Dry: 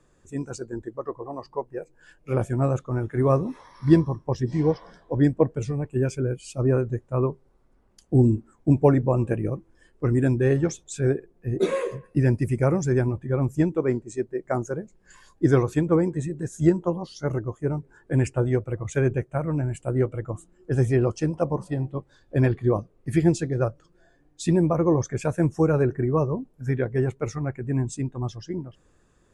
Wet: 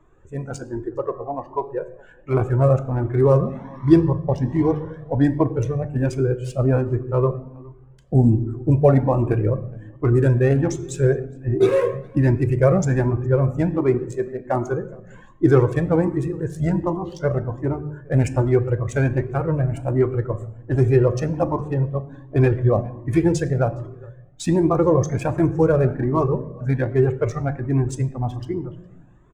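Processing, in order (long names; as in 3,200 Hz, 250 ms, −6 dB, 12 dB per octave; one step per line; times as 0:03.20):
adaptive Wiener filter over 9 samples
parametric band 690 Hz +3.5 dB 1.5 octaves
in parallel at −3 dB: brickwall limiter −14.5 dBFS, peak gain reduction 11.5 dB
on the sum: slap from a distant wall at 71 metres, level −25 dB
on a send at −11 dB: convolution reverb RT60 0.75 s, pre-delay 9 ms
on the sum: flanger whose copies keep moving one way rising 1.3 Hz
level +3.5 dB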